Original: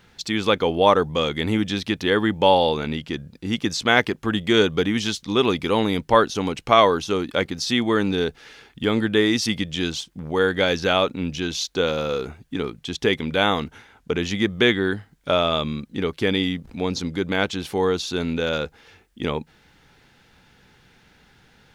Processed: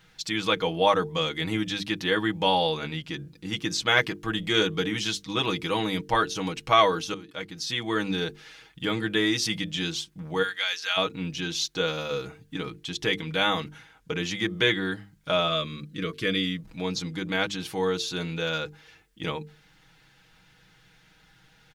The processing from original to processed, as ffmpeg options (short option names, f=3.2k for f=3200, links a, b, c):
-filter_complex "[0:a]asplit=3[a][b][c];[a]afade=t=out:st=10.42:d=0.02[d];[b]highpass=1.4k,afade=t=in:st=10.42:d=0.02,afade=t=out:st=10.96:d=0.02[e];[c]afade=t=in:st=10.96:d=0.02[f];[d][e][f]amix=inputs=3:normalize=0,asettb=1/sr,asplit=3[g][h][i];[g]atrim=end=15.484[j];[h]atrim=start=15.48:end=16.62,asetpts=PTS-STARTPTS,afade=t=in:d=0.004:c=qsin,afade=t=out:st=1.136:d=0.004:c=qsin,asuperstop=centerf=820:order=20:qfactor=2.5[k];[i]atrim=start=16.616[l];[j][k]acrossfade=d=0.004:c1=hsin:c2=qsin[m];[m][l]acrossfade=d=0.004:c1=qsin:c2=hsin,asplit=2[n][o];[n]atrim=end=7.14,asetpts=PTS-STARTPTS,afade=t=out:st=7.136:d=0.004:c=hsin:silence=0.149624[p];[o]atrim=start=7.14,asetpts=PTS-STARTPTS,afade=t=in:d=0.89:silence=0.149624[q];[p][q]concat=n=2:v=0:a=1,equalizer=f=410:w=0.51:g=-5.5,bandreject=f=50:t=h:w=6,bandreject=f=100:t=h:w=6,bandreject=f=150:t=h:w=6,bandreject=f=200:t=h:w=6,bandreject=f=250:t=h:w=6,bandreject=f=300:t=h:w=6,bandreject=f=350:t=h:w=6,bandreject=f=400:t=h:w=6,bandreject=f=450:t=h:w=6,aecho=1:1:6.3:0.74,volume=-3.5dB"